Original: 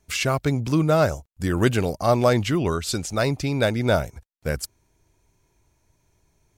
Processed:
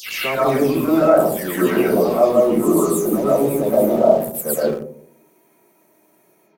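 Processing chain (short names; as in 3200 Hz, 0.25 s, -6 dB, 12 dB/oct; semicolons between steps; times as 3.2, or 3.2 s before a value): spectral delay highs early, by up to 0.243 s; HPF 230 Hz 24 dB/oct; reverse; compressor 16:1, threshold -29 dBFS, peak gain reduction 16 dB; reverse; EQ curve 2000 Hz 0 dB, 6200 Hz -9 dB, 13000 Hz +11 dB; spectral gain 2.19–4.49, 1300–5800 Hz -17 dB; notches 50/100/150/200/250/300/350 Hz; echo 85 ms -22 dB; digital reverb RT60 0.64 s, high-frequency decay 0.3×, pre-delay 85 ms, DRR -7 dB; in parallel at -9.5 dB: sample gate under -30.5 dBFS; on the sum: low shelf 350 Hz +7.5 dB; gain +4 dB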